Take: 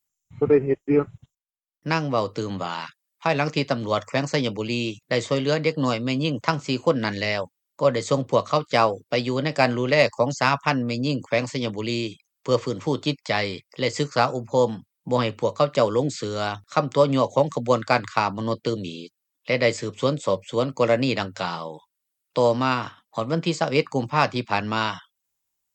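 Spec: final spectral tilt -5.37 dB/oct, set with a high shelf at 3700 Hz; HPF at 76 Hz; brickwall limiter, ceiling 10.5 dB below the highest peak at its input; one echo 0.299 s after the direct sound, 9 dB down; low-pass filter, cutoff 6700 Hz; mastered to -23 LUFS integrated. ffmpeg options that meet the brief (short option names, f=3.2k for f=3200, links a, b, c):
-af "highpass=76,lowpass=6.7k,highshelf=f=3.7k:g=-8,alimiter=limit=-16dB:level=0:latency=1,aecho=1:1:299:0.355,volume=5dB"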